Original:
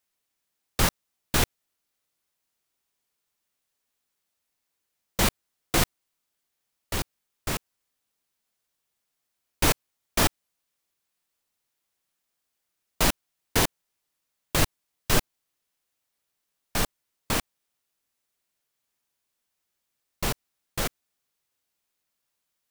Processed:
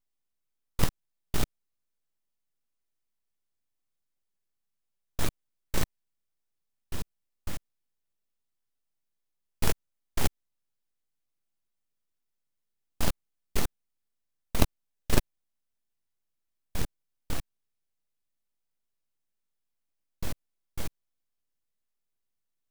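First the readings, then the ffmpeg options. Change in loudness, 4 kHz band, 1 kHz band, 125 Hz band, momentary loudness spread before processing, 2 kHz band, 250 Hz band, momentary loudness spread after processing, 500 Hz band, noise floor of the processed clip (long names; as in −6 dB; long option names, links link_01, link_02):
−8.0 dB, −10.0 dB, −9.5 dB, −3.5 dB, 10 LU, −10.5 dB, −5.0 dB, 15 LU, −7.0 dB, −81 dBFS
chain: -af "aeval=exprs='abs(val(0))':channel_layout=same,lowshelf=frequency=370:gain=10.5,aeval=exprs='1*(cos(1*acos(clip(val(0)/1,-1,1)))-cos(1*PI/2))+0.178*(cos(3*acos(clip(val(0)/1,-1,1)))-cos(3*PI/2))+0.0562*(cos(4*acos(clip(val(0)/1,-1,1)))-cos(4*PI/2))':channel_layout=same,volume=-2dB"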